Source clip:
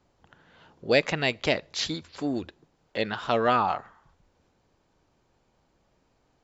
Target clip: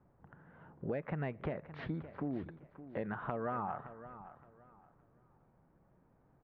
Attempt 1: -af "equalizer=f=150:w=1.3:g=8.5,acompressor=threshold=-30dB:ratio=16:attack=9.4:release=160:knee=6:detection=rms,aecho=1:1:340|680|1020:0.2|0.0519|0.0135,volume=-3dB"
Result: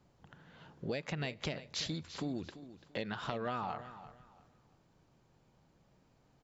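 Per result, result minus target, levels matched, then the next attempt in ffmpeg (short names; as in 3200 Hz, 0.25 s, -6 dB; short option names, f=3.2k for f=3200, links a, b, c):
echo 0.228 s early; 2000 Hz band +2.5 dB
-af "equalizer=f=150:w=1.3:g=8.5,acompressor=threshold=-30dB:ratio=16:attack=9.4:release=160:knee=6:detection=rms,aecho=1:1:568|1136|1704:0.2|0.0519|0.0135,volume=-3dB"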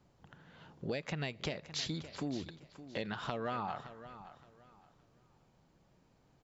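2000 Hz band +2.5 dB
-af "lowpass=f=1.7k:w=0.5412,lowpass=f=1.7k:w=1.3066,equalizer=f=150:w=1.3:g=8.5,acompressor=threshold=-30dB:ratio=16:attack=9.4:release=160:knee=6:detection=rms,aecho=1:1:568|1136|1704:0.2|0.0519|0.0135,volume=-3dB"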